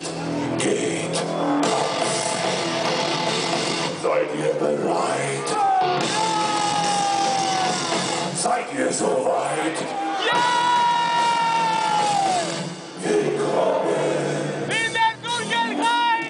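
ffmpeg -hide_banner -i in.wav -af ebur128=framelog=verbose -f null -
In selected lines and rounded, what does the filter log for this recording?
Integrated loudness:
  I:         -21.5 LUFS
  Threshold: -31.5 LUFS
Loudness range:
  LRA:         1.9 LU
  Threshold: -41.4 LUFS
  LRA low:   -22.2 LUFS
  LRA high:  -20.3 LUFS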